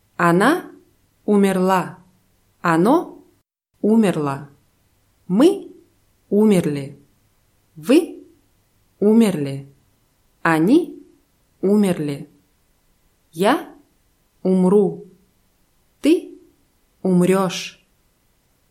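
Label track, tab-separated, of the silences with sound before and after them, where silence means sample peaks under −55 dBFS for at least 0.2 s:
3.410000	3.740000	silence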